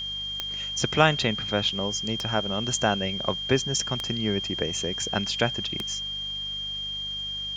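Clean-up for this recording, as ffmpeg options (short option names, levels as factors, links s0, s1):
-af "adeclick=t=4,bandreject=f=49.8:t=h:w=4,bandreject=f=99.6:t=h:w=4,bandreject=f=149.4:t=h:w=4,bandreject=f=199.2:t=h:w=4,bandreject=f=3200:w=30,afwtdn=0.0032"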